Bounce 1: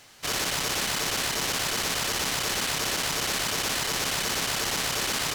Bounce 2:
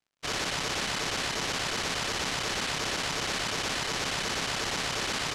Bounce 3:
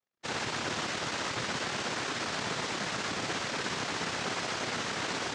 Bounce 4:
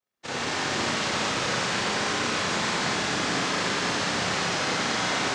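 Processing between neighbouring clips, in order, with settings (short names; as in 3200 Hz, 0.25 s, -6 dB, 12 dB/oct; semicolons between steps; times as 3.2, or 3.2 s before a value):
crossover distortion -45.5 dBFS; air absorption 74 m
noise vocoder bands 3; air absorption 110 m
Schroeder reverb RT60 3.3 s, combs from 30 ms, DRR -6.5 dB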